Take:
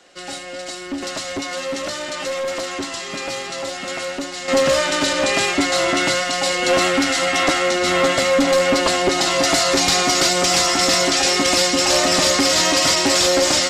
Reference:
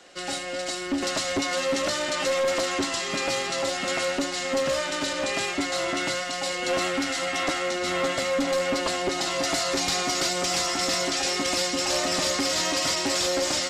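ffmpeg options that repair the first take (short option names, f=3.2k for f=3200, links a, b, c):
-af "asetnsamples=n=441:p=0,asendcmd='4.48 volume volume -9dB',volume=0dB"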